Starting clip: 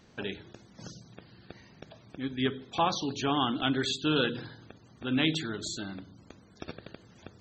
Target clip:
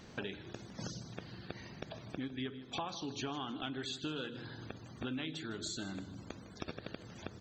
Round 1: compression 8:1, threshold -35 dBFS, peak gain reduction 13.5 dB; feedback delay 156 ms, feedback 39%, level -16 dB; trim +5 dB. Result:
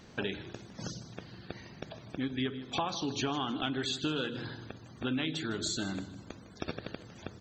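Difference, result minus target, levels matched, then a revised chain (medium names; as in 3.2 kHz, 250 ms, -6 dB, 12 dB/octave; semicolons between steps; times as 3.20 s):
compression: peak gain reduction -7 dB
compression 8:1, threshold -43 dBFS, peak gain reduction 20.5 dB; feedback delay 156 ms, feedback 39%, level -16 dB; trim +5 dB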